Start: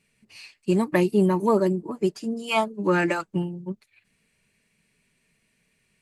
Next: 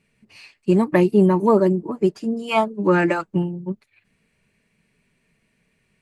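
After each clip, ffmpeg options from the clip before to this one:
ffmpeg -i in.wav -af "highshelf=frequency=2900:gain=-10,volume=5dB" out.wav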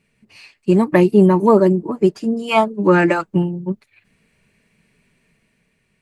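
ffmpeg -i in.wav -af "dynaudnorm=framelen=110:gausssize=13:maxgain=4dB,volume=1.5dB" out.wav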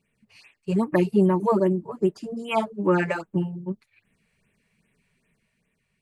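ffmpeg -i in.wav -af "afftfilt=real='re*(1-between(b*sr/1024,250*pow(5800/250,0.5+0.5*sin(2*PI*2.5*pts/sr))/1.41,250*pow(5800/250,0.5+0.5*sin(2*PI*2.5*pts/sr))*1.41))':imag='im*(1-between(b*sr/1024,250*pow(5800/250,0.5+0.5*sin(2*PI*2.5*pts/sr))/1.41,250*pow(5800/250,0.5+0.5*sin(2*PI*2.5*pts/sr))*1.41))':win_size=1024:overlap=0.75,volume=-7.5dB" out.wav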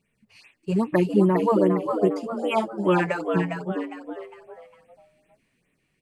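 ffmpeg -i in.wav -filter_complex "[0:a]asplit=5[link_01][link_02][link_03][link_04][link_05];[link_02]adelay=406,afreqshift=110,volume=-6dB[link_06];[link_03]adelay=812,afreqshift=220,volume=-14.6dB[link_07];[link_04]adelay=1218,afreqshift=330,volume=-23.3dB[link_08];[link_05]adelay=1624,afreqshift=440,volume=-31.9dB[link_09];[link_01][link_06][link_07][link_08][link_09]amix=inputs=5:normalize=0" out.wav

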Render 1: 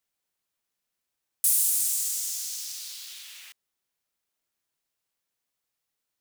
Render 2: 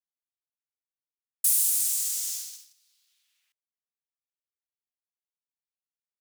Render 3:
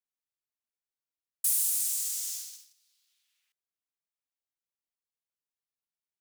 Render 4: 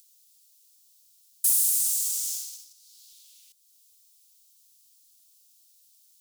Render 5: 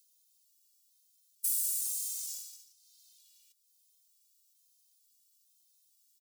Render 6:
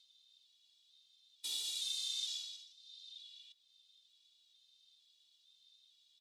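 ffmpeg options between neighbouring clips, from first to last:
ffmpeg -i in.wav -af "agate=range=-29dB:threshold=-32dB:ratio=16:detection=peak" out.wav
ffmpeg -i in.wav -af "asoftclip=type=tanh:threshold=-11dB,volume=-3.5dB" out.wav
ffmpeg -i in.wav -filter_complex "[0:a]equalizer=frequency=1700:width_type=o:width=1.2:gain=-11,acrossover=split=880|3400[link_01][link_02][link_03];[link_03]acompressor=mode=upward:threshold=-41dB:ratio=2.5[link_04];[link_01][link_02][link_04]amix=inputs=3:normalize=0,volume=5dB" out.wav
ffmpeg -i in.wav -filter_complex "[0:a]asplit=2[link_01][link_02];[link_02]adelay=14,volume=-14dB[link_03];[link_01][link_03]amix=inputs=2:normalize=0,afftfilt=real='re*gt(sin(2*PI*1.1*pts/sr)*(1-2*mod(floor(b*sr/1024/250),2)),0)':imag='im*gt(sin(2*PI*1.1*pts/sr)*(1-2*mod(floor(b*sr/1024/250),2)),0)':win_size=1024:overlap=0.75,volume=-6dB" out.wav
ffmpeg -i in.wav -af "lowpass=frequency=3600:width_type=q:width=11,volume=2.5dB" out.wav

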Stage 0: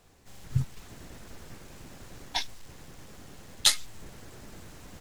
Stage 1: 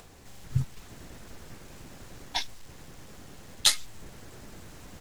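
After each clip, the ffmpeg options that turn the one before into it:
ffmpeg -i in.wav -af "acompressor=mode=upward:threshold=-43dB:ratio=2.5" out.wav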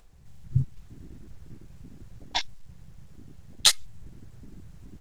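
ffmpeg -i in.wav -af "afwtdn=0.0126,volume=3dB" out.wav

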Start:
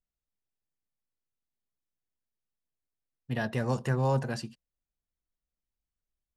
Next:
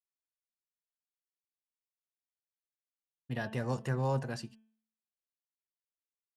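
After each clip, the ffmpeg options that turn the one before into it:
ffmpeg -i in.wav -af "agate=range=-33dB:threshold=-45dB:ratio=3:detection=peak,bandreject=frequency=220.3:width_type=h:width=4,bandreject=frequency=440.6:width_type=h:width=4,bandreject=frequency=660.9:width_type=h:width=4,bandreject=frequency=881.2:width_type=h:width=4,bandreject=frequency=1101.5:width_type=h:width=4,bandreject=frequency=1321.8:width_type=h:width=4,bandreject=frequency=1542.1:width_type=h:width=4,bandreject=frequency=1762.4:width_type=h:width=4,bandreject=frequency=1982.7:width_type=h:width=4,bandreject=frequency=2203:width_type=h:width=4,bandreject=frequency=2423.3:width_type=h:width=4,bandreject=frequency=2643.6:width_type=h:width=4,bandreject=frequency=2863.9:width_type=h:width=4,bandreject=frequency=3084.2:width_type=h:width=4,bandreject=frequency=3304.5:width_type=h:width=4,volume=-4.5dB" out.wav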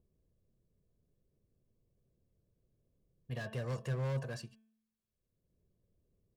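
ffmpeg -i in.wav -filter_complex "[0:a]aecho=1:1:1.8:0.59,acrossover=split=340[link_01][link_02];[link_01]acompressor=mode=upward:threshold=-40dB:ratio=2.5[link_03];[link_02]asoftclip=type=hard:threshold=-37.5dB[link_04];[link_03][link_04]amix=inputs=2:normalize=0,volume=-4dB" out.wav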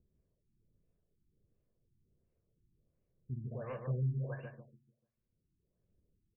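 ffmpeg -i in.wav -filter_complex "[0:a]acrossover=split=440[link_01][link_02];[link_01]aeval=exprs='val(0)*(1-0.7/2+0.7/2*cos(2*PI*1.5*n/s))':channel_layout=same[link_03];[link_02]aeval=exprs='val(0)*(1-0.7/2-0.7/2*cos(2*PI*1.5*n/s))':channel_layout=same[link_04];[link_03][link_04]amix=inputs=2:normalize=0,asplit=2[link_05][link_06];[link_06]adelay=147,lowpass=frequency=1500:poles=1,volume=-4dB,asplit=2[link_07][link_08];[link_08]adelay=147,lowpass=frequency=1500:poles=1,volume=0.37,asplit=2[link_09][link_10];[link_10]adelay=147,lowpass=frequency=1500:poles=1,volume=0.37,asplit=2[link_11][link_12];[link_12]adelay=147,lowpass=frequency=1500:poles=1,volume=0.37,asplit=2[link_13][link_14];[link_14]adelay=147,lowpass=frequency=1500:poles=1,volume=0.37[link_15];[link_07][link_09][link_11][link_13][link_15]amix=inputs=5:normalize=0[link_16];[link_05][link_16]amix=inputs=2:normalize=0,afftfilt=real='re*lt(b*sr/1024,360*pow(3000/360,0.5+0.5*sin(2*PI*1.4*pts/sr)))':imag='im*lt(b*sr/1024,360*pow(3000/360,0.5+0.5*sin(2*PI*1.4*pts/sr)))':win_size=1024:overlap=0.75,volume=1dB" out.wav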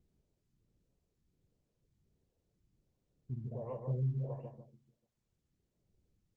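ffmpeg -i in.wav -af "asuperstop=centerf=1400:order=8:qfactor=1.5,highshelf=frequency=1700:width_type=q:width=3:gain=-8" -ar 48000 -c:a libopus -b:a 16k out.opus

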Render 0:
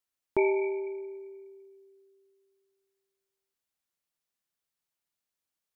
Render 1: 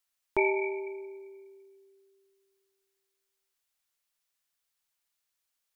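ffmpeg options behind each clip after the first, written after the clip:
ffmpeg -i in.wav -af "equalizer=frequency=200:width=0.36:gain=-11.5,volume=6dB" out.wav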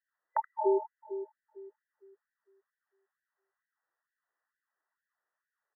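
ffmpeg -i in.wav -af "afftfilt=real='re*between(b*sr/4096,120,2000)':imag='im*between(b*sr/4096,120,2000)':win_size=4096:overlap=0.75,aecho=1:1:77:0.501,afftfilt=real='re*gte(b*sr/1024,290*pow(1500/290,0.5+0.5*sin(2*PI*2.2*pts/sr)))':imag='im*gte(b*sr/1024,290*pow(1500/290,0.5+0.5*sin(2*PI*2.2*pts/sr)))':win_size=1024:overlap=0.75,volume=5.5dB" out.wav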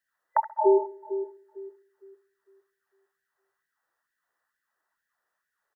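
ffmpeg -i in.wav -filter_complex "[0:a]asplit=2[link_01][link_02];[link_02]adelay=66,lowpass=frequency=1600:poles=1,volume=-16.5dB,asplit=2[link_03][link_04];[link_04]adelay=66,lowpass=frequency=1600:poles=1,volume=0.53,asplit=2[link_05][link_06];[link_06]adelay=66,lowpass=frequency=1600:poles=1,volume=0.53,asplit=2[link_07][link_08];[link_08]adelay=66,lowpass=frequency=1600:poles=1,volume=0.53,asplit=2[link_09][link_10];[link_10]adelay=66,lowpass=frequency=1600:poles=1,volume=0.53[link_11];[link_01][link_03][link_05][link_07][link_09][link_11]amix=inputs=6:normalize=0,volume=7dB" out.wav

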